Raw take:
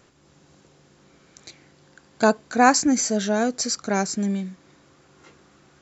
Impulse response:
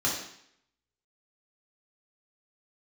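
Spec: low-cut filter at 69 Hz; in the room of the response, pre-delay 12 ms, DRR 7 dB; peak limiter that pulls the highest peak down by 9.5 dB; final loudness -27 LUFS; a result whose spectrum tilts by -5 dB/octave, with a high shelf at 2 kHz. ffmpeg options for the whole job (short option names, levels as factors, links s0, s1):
-filter_complex "[0:a]highpass=69,highshelf=f=2000:g=-9,alimiter=limit=0.224:level=0:latency=1,asplit=2[s0][s1];[1:a]atrim=start_sample=2205,adelay=12[s2];[s1][s2]afir=irnorm=-1:irlink=0,volume=0.141[s3];[s0][s3]amix=inputs=2:normalize=0,volume=0.75"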